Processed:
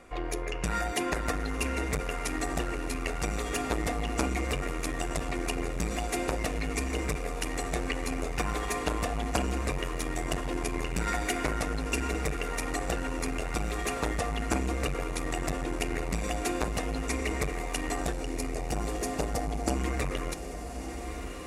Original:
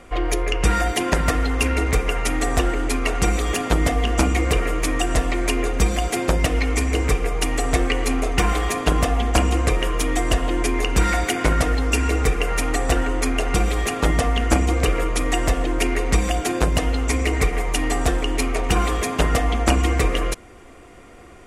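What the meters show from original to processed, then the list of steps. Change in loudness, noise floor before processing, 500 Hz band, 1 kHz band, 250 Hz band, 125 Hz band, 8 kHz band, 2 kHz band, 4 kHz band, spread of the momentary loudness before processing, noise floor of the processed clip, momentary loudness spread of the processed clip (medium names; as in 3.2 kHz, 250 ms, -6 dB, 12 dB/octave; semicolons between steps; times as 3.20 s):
-10.5 dB, -44 dBFS, -9.5 dB, -9.5 dB, -9.5 dB, -12.0 dB, -9.0 dB, -9.5 dB, -11.0 dB, 3 LU, -36 dBFS, 3 LU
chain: time-frequency box 18.13–19.76 s, 890–4200 Hz -8 dB; bass shelf 110 Hz -5 dB; band-stop 3.1 kHz, Q 10; on a send: echo that smears into a reverb 1216 ms, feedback 49%, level -10 dB; on the sum: transformer saturation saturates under 420 Hz; trim -7 dB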